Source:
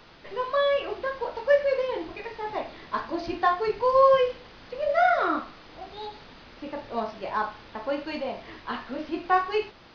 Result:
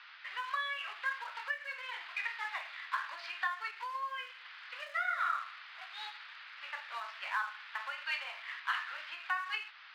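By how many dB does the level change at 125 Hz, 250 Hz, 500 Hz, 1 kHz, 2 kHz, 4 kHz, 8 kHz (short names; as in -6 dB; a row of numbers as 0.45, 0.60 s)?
under -40 dB, under -40 dB, -32.5 dB, -12.0 dB, -2.0 dB, -3.5 dB, n/a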